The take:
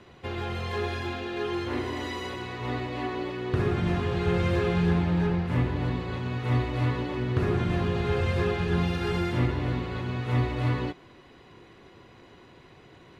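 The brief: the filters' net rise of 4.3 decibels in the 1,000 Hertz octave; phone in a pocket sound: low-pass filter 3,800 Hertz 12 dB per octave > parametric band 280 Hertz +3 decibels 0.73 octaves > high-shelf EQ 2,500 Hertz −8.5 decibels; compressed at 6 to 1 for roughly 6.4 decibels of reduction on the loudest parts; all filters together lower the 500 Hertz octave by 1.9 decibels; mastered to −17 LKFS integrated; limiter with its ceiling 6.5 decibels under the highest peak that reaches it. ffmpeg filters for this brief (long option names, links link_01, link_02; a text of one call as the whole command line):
ffmpeg -i in.wav -af "equalizer=frequency=500:width_type=o:gain=-5.5,equalizer=frequency=1000:width_type=o:gain=8.5,acompressor=threshold=-27dB:ratio=6,alimiter=level_in=0.5dB:limit=-24dB:level=0:latency=1,volume=-0.5dB,lowpass=3800,equalizer=frequency=280:width_type=o:width=0.73:gain=3,highshelf=frequency=2500:gain=-8.5,volume=17dB" out.wav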